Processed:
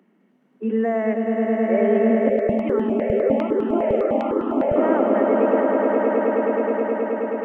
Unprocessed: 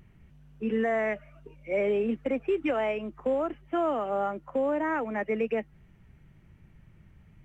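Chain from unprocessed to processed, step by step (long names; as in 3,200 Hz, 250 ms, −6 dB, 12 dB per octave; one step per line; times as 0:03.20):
Butterworth high-pass 200 Hz 72 dB per octave
tilt shelving filter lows +7 dB, about 1,400 Hz
notch filter 2,400 Hz, Q 16
echo that builds up and dies away 106 ms, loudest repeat 8, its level −5.5 dB
0:02.29–0:04.76: step-sequenced phaser 9.9 Hz 280–2,200 Hz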